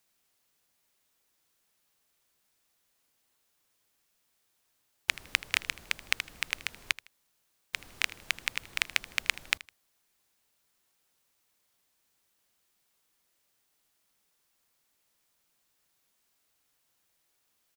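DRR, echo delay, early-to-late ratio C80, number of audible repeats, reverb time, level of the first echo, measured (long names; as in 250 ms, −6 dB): no reverb audible, 79 ms, no reverb audible, 2, no reverb audible, −19.0 dB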